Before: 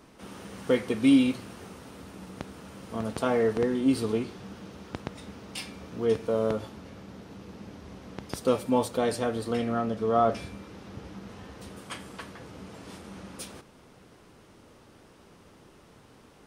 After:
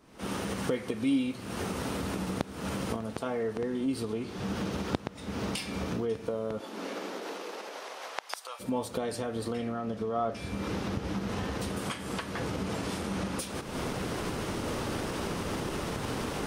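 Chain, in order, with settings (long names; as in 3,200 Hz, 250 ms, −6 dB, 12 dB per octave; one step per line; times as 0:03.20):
camcorder AGC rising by 64 dB per second
0:06.58–0:08.59: high-pass filter 220 Hz → 870 Hz 24 dB per octave
soft clipping −3 dBFS, distortion −25 dB
level −7.5 dB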